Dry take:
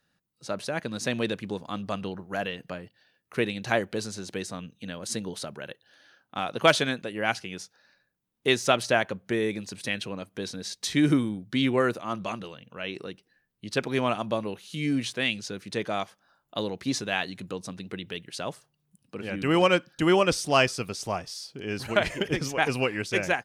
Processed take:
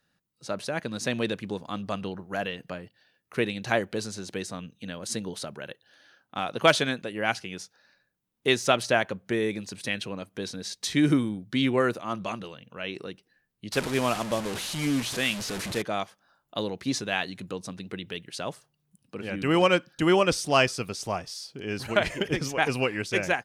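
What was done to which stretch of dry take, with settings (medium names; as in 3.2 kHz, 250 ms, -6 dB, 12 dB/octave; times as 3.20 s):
13.72–15.82 s: one-bit delta coder 64 kbps, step -27.5 dBFS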